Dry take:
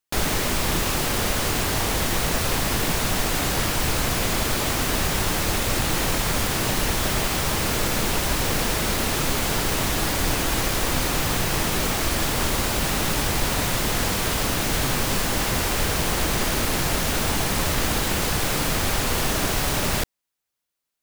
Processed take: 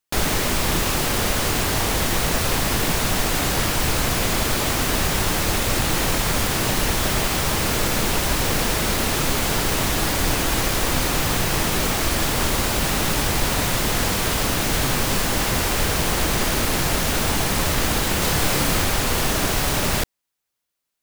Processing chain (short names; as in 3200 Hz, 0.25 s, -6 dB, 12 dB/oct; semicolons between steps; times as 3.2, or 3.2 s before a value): 18.19–18.84 doubler 28 ms -4.5 dB; gain +2 dB